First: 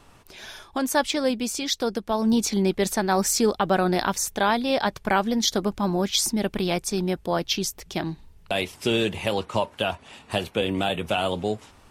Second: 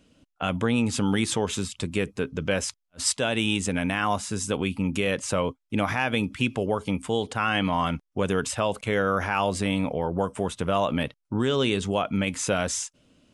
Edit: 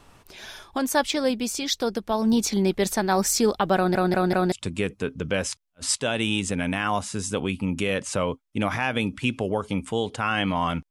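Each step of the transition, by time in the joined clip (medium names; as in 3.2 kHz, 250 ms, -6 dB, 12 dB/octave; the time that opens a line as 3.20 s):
first
3.76 s: stutter in place 0.19 s, 4 plays
4.52 s: go over to second from 1.69 s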